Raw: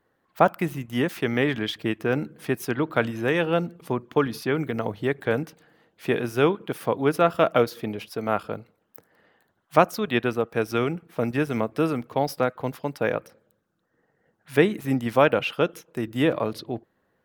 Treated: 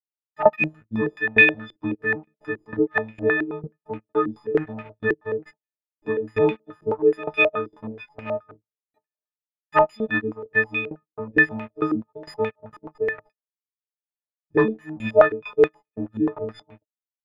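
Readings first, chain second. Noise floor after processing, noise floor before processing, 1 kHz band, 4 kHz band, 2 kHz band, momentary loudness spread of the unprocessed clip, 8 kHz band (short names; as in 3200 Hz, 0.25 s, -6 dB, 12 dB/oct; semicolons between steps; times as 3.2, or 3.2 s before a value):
under -85 dBFS, -72 dBFS, -1.5 dB, -6.5 dB, +7.5 dB, 10 LU, under -15 dB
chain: frequency quantiser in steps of 6 st; spectral noise reduction 11 dB; gate -40 dBFS, range -30 dB; sample leveller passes 2; tremolo saw down 2.2 Hz, depth 90%; stepped low-pass 9.4 Hz 340–2400 Hz; gain -6.5 dB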